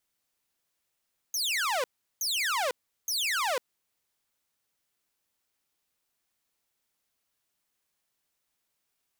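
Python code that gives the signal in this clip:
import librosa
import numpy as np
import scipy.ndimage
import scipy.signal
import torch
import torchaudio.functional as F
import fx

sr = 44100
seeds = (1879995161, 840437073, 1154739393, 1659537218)

y = fx.laser_zaps(sr, level_db=-23.5, start_hz=6600.0, end_hz=470.0, length_s=0.5, wave='saw', shots=3, gap_s=0.37)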